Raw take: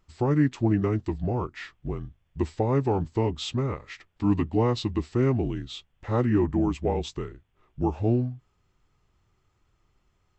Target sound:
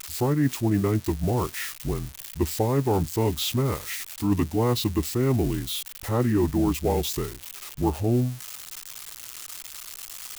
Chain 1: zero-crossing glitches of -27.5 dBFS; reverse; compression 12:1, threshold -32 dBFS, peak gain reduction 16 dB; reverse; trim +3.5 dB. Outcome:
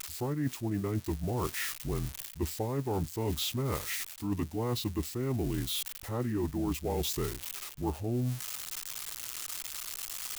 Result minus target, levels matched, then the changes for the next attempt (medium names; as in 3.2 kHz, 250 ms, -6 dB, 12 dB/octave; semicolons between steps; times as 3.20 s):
compression: peak gain reduction +10 dB
change: compression 12:1, threshold -21 dBFS, peak gain reduction 6 dB